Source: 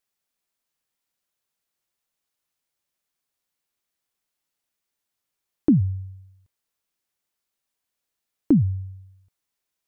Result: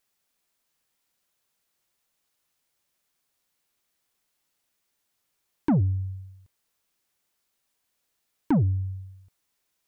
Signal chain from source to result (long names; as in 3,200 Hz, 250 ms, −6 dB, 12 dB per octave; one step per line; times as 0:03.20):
in parallel at −0.5 dB: downward compressor, threshold −30 dBFS, peak gain reduction 15.5 dB
on the sum: soft clipping −17.5 dBFS, distortion −10 dB